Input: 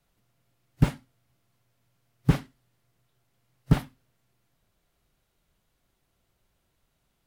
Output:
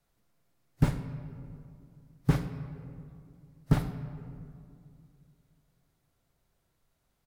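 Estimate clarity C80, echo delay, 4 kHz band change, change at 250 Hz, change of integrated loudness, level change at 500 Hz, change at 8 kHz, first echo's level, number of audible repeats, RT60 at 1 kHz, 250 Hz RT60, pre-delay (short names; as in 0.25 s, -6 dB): 10.0 dB, 84 ms, -5.0 dB, -2.5 dB, -5.5 dB, -2.0 dB, n/a, -19.0 dB, 1, 2.3 s, 3.0 s, 27 ms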